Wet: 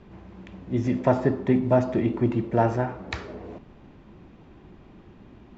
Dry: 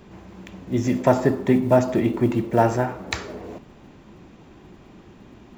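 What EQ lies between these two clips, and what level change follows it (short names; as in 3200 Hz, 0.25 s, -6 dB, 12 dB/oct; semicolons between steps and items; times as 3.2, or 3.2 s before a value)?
air absorption 140 m; low shelf 92 Hz +6 dB; -3.5 dB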